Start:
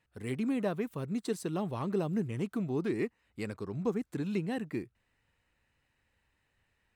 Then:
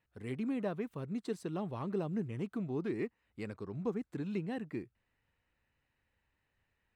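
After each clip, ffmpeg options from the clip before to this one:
-af "highshelf=f=6100:g=-11,volume=0.631"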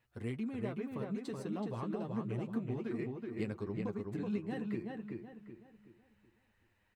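-filter_complex "[0:a]acompressor=threshold=0.00891:ratio=6,flanger=delay=8.3:depth=1.5:regen=28:speed=0.38:shape=sinusoidal,asplit=2[s0][s1];[s1]adelay=376,lowpass=f=3200:p=1,volume=0.708,asplit=2[s2][s3];[s3]adelay=376,lowpass=f=3200:p=1,volume=0.37,asplit=2[s4][s5];[s5]adelay=376,lowpass=f=3200:p=1,volume=0.37,asplit=2[s6][s7];[s7]adelay=376,lowpass=f=3200:p=1,volume=0.37,asplit=2[s8][s9];[s9]adelay=376,lowpass=f=3200:p=1,volume=0.37[s10];[s2][s4][s6][s8][s10]amix=inputs=5:normalize=0[s11];[s0][s11]amix=inputs=2:normalize=0,volume=2.37"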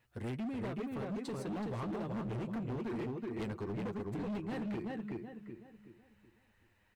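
-af "asoftclip=type=hard:threshold=0.0112,volume=1.5"

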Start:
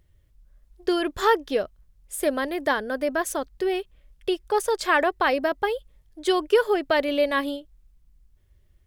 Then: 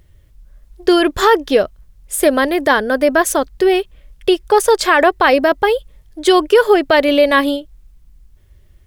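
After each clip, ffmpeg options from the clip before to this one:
-af "alimiter=level_in=4.47:limit=0.891:release=50:level=0:latency=1,volume=0.891"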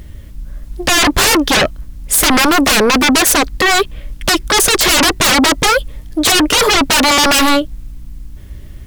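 -af "aeval=exprs='0.794*sin(PI/2*7.08*val(0)/0.794)':c=same,aeval=exprs='val(0)+0.0224*(sin(2*PI*60*n/s)+sin(2*PI*2*60*n/s)/2+sin(2*PI*3*60*n/s)/3+sin(2*PI*4*60*n/s)/4+sin(2*PI*5*60*n/s)/5)':c=same,volume=0.531"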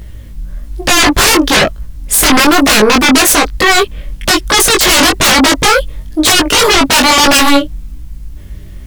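-af "flanger=delay=18:depth=4.6:speed=1.1,volume=2"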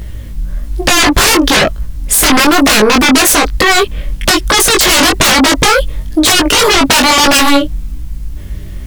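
-af "alimiter=level_in=2:limit=0.891:release=50:level=0:latency=1,volume=0.891"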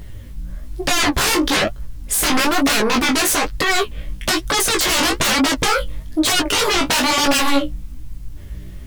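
-af "flanger=delay=6.9:depth=10:regen=37:speed=1.1:shape=sinusoidal,volume=0.562"

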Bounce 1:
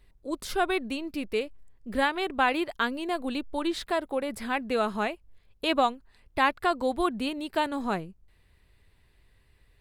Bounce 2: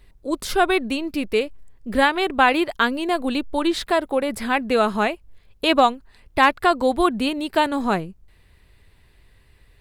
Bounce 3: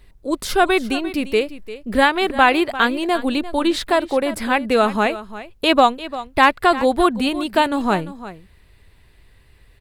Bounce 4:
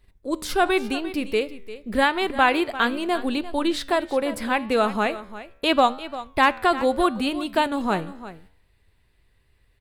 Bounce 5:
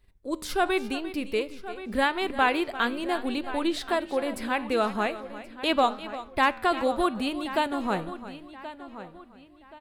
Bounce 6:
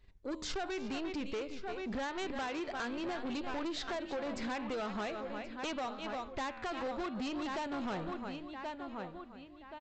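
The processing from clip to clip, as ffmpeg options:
-af "asoftclip=type=hard:threshold=0.251,volume=2.51"
-af "aecho=1:1:347:0.178,volume=1.33"
-af "agate=range=0.447:threshold=0.00501:ratio=16:detection=peak,flanger=delay=9.7:depth=4.6:regen=90:speed=0.81:shape=triangular"
-filter_complex "[0:a]asplit=2[s0][s1];[s1]adelay=1077,lowpass=f=4300:p=1,volume=0.2,asplit=2[s2][s3];[s3]adelay=1077,lowpass=f=4300:p=1,volume=0.35,asplit=2[s4][s5];[s5]adelay=1077,lowpass=f=4300:p=1,volume=0.35[s6];[s0][s2][s4][s6]amix=inputs=4:normalize=0,volume=0.596"
-af "acompressor=threshold=0.0398:ratio=6,aresample=16000,asoftclip=type=tanh:threshold=0.02,aresample=44100"

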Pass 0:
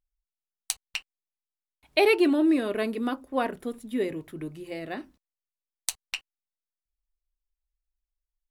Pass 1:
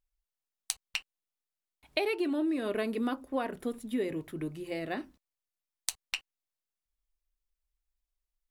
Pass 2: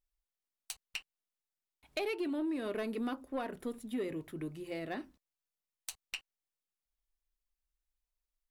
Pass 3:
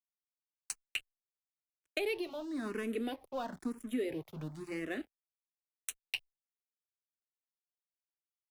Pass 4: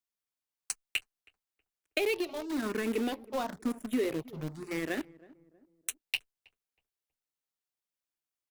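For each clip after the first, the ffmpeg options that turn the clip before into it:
-af "acompressor=threshold=0.0447:ratio=12"
-af "asoftclip=type=tanh:threshold=0.0631,volume=0.668"
-filter_complex "[0:a]aeval=exprs='sgn(val(0))*max(abs(val(0))-0.00211,0)':c=same,acrossover=split=200|3000[s0][s1][s2];[s1]acompressor=threshold=0.0141:ratio=6[s3];[s0][s3][s2]amix=inputs=3:normalize=0,asplit=2[s4][s5];[s5]afreqshift=1[s6];[s4][s6]amix=inputs=2:normalize=1,volume=2"
-filter_complex "[0:a]asplit=2[s0][s1];[s1]acrusher=bits=5:mix=0:aa=0.000001,volume=0.398[s2];[s0][s2]amix=inputs=2:normalize=0,asplit=2[s3][s4];[s4]adelay=320,lowpass=f=800:p=1,volume=0.1,asplit=2[s5][s6];[s6]adelay=320,lowpass=f=800:p=1,volume=0.45,asplit=2[s7][s8];[s8]adelay=320,lowpass=f=800:p=1,volume=0.45[s9];[s3][s5][s7][s9]amix=inputs=4:normalize=0,volume=1.26"

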